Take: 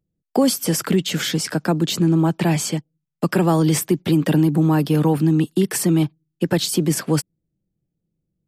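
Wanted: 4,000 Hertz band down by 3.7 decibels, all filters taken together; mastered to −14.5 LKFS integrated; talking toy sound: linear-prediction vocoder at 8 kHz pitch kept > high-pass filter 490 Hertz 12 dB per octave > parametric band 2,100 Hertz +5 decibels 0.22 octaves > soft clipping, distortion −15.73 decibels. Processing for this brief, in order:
parametric band 4,000 Hz −5 dB
linear-prediction vocoder at 8 kHz pitch kept
high-pass filter 490 Hz 12 dB per octave
parametric band 2,100 Hz +5 dB 0.22 octaves
soft clipping −19 dBFS
level +16 dB

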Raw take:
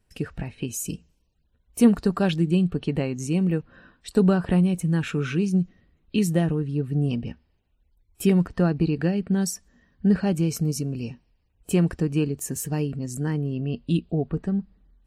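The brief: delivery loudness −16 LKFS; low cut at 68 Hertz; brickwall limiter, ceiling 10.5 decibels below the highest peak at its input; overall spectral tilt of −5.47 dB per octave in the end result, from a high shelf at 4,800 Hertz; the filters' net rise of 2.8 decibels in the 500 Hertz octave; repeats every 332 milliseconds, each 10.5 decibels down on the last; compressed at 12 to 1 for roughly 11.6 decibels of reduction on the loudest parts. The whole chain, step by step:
high-pass filter 68 Hz
parametric band 500 Hz +3.5 dB
high-shelf EQ 4,800 Hz +8.5 dB
downward compressor 12 to 1, threshold −22 dBFS
brickwall limiter −23.5 dBFS
repeating echo 332 ms, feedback 30%, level −10.5 dB
level +16.5 dB

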